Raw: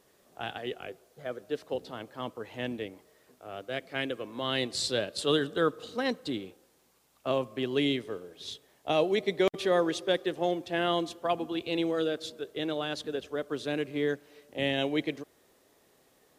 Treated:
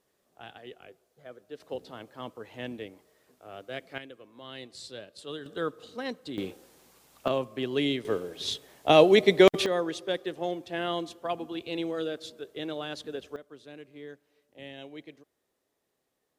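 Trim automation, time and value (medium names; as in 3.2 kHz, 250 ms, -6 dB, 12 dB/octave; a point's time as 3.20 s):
-9.5 dB
from 1.60 s -3 dB
from 3.98 s -13 dB
from 5.46 s -5 dB
from 6.38 s +8 dB
from 7.28 s 0 dB
from 8.05 s +8.5 dB
from 9.66 s -3 dB
from 13.36 s -15 dB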